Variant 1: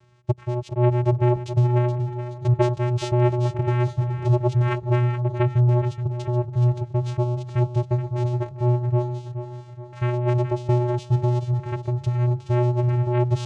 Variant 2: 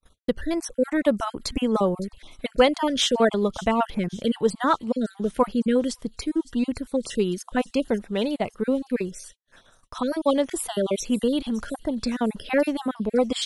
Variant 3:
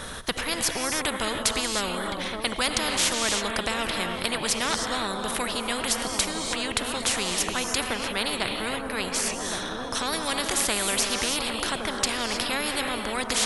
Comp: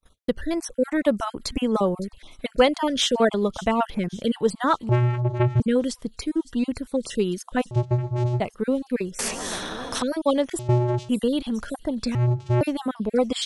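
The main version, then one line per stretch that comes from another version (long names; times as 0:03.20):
2
0:04.89–0:05.60: punch in from 1
0:07.71–0:08.40: punch in from 1
0:09.19–0:10.02: punch in from 3
0:10.59–0:11.09: punch in from 1
0:12.15–0:12.61: punch in from 1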